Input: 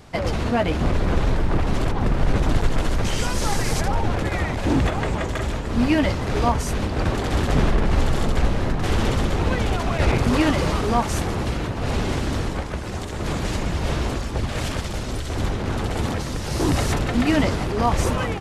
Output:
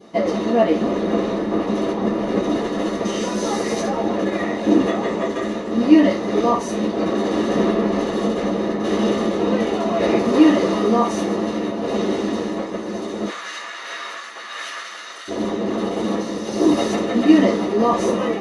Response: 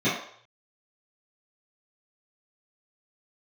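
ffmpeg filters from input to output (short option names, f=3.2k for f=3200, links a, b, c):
-filter_complex "[0:a]asettb=1/sr,asplit=3[a][b][c];[a]atrim=end=13.284[d];[b]atrim=start=13.28:end=15.28,asetpts=PTS-STARTPTS,afade=t=in:d=0.004:c=qsin,afade=t=out:st=1.996:d=0.004:c=qsin,highpass=f=1.5k:t=q:w=2.3[e];[c]atrim=start=15.276[f];[d][e]acrossfade=d=0.004:c1=hsin:c2=qsin[g];[g][f]acrossfade=d=0.004:c1=qsin:c2=hsin[h];[1:a]atrim=start_sample=2205,asetrate=74970,aresample=44100[i];[h][i]afir=irnorm=-1:irlink=0,volume=-10.5dB"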